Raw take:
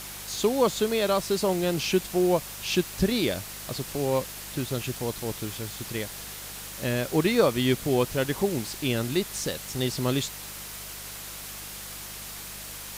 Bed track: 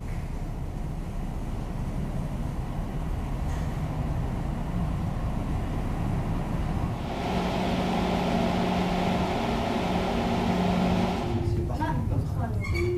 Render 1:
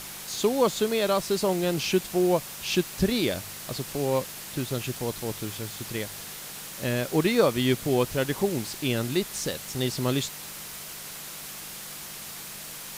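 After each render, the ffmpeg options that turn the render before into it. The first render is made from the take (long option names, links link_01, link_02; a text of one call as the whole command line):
ffmpeg -i in.wav -af "bandreject=frequency=50:width_type=h:width=4,bandreject=frequency=100:width_type=h:width=4" out.wav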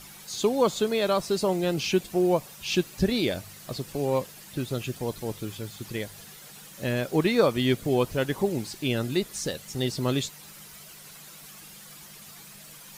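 ffmpeg -i in.wav -af "afftdn=noise_reduction=10:noise_floor=-40" out.wav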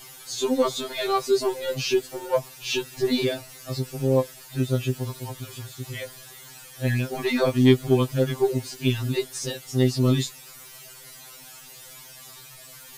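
ffmpeg -i in.wav -filter_complex "[0:a]asplit=2[link_01][link_02];[link_02]asoftclip=type=hard:threshold=-22dB,volume=-4dB[link_03];[link_01][link_03]amix=inputs=2:normalize=0,afftfilt=real='re*2.45*eq(mod(b,6),0)':imag='im*2.45*eq(mod(b,6),0)':win_size=2048:overlap=0.75" out.wav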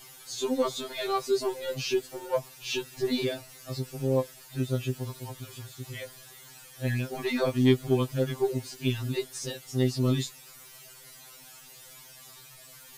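ffmpeg -i in.wav -af "volume=-5dB" out.wav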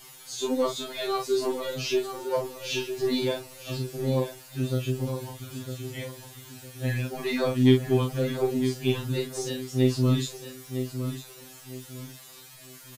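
ffmpeg -i in.wav -filter_complex "[0:a]asplit=2[link_01][link_02];[link_02]adelay=39,volume=-5dB[link_03];[link_01][link_03]amix=inputs=2:normalize=0,asplit=2[link_04][link_05];[link_05]adelay=956,lowpass=frequency=3400:poles=1,volume=-8.5dB,asplit=2[link_06][link_07];[link_07]adelay=956,lowpass=frequency=3400:poles=1,volume=0.31,asplit=2[link_08][link_09];[link_09]adelay=956,lowpass=frequency=3400:poles=1,volume=0.31,asplit=2[link_10][link_11];[link_11]adelay=956,lowpass=frequency=3400:poles=1,volume=0.31[link_12];[link_04][link_06][link_08][link_10][link_12]amix=inputs=5:normalize=0" out.wav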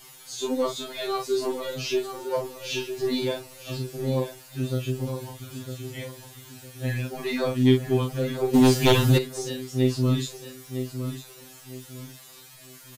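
ffmpeg -i in.wav -filter_complex "[0:a]asplit=3[link_01][link_02][link_03];[link_01]afade=type=out:start_time=8.53:duration=0.02[link_04];[link_02]aeval=exprs='0.251*sin(PI/2*2.82*val(0)/0.251)':channel_layout=same,afade=type=in:start_time=8.53:duration=0.02,afade=type=out:start_time=9.17:duration=0.02[link_05];[link_03]afade=type=in:start_time=9.17:duration=0.02[link_06];[link_04][link_05][link_06]amix=inputs=3:normalize=0" out.wav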